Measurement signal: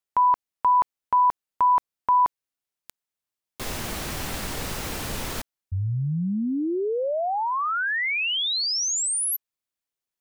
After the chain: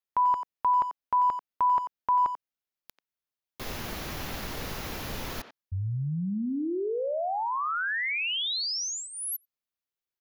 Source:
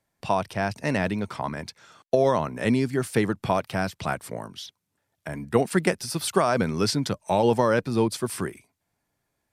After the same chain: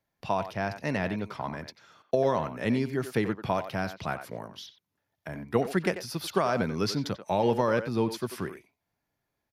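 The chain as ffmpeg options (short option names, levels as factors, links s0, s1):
-filter_complex "[0:a]equalizer=f=8400:t=o:w=0.33:g=-14.5,asplit=2[s0][s1];[s1]adelay=90,highpass=300,lowpass=3400,asoftclip=type=hard:threshold=0.168,volume=0.316[s2];[s0][s2]amix=inputs=2:normalize=0,volume=0.596"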